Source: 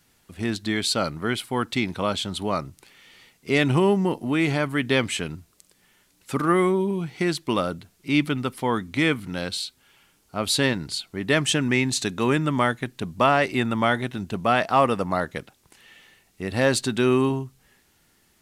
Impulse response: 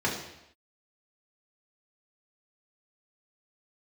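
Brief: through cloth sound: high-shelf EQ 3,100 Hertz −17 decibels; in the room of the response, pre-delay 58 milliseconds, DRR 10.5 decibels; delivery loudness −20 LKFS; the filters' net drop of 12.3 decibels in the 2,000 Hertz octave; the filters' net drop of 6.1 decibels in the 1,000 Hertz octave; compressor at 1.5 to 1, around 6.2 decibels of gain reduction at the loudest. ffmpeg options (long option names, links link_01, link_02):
-filter_complex "[0:a]equalizer=frequency=1000:width_type=o:gain=-3.5,equalizer=frequency=2000:width_type=o:gain=-8.5,acompressor=threshold=-34dB:ratio=1.5,asplit=2[link_01][link_02];[1:a]atrim=start_sample=2205,adelay=58[link_03];[link_02][link_03]afir=irnorm=-1:irlink=0,volume=-21.5dB[link_04];[link_01][link_04]amix=inputs=2:normalize=0,highshelf=frequency=3100:gain=-17,volume=11dB"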